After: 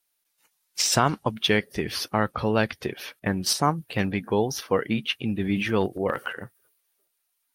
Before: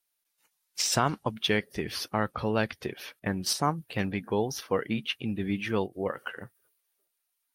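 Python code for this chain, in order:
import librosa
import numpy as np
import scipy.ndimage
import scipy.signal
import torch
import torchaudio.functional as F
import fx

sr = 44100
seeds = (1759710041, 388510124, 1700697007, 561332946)

y = fx.transient(x, sr, attack_db=0, sustain_db=7, at=(5.42, 6.33))
y = y * librosa.db_to_amplitude(4.5)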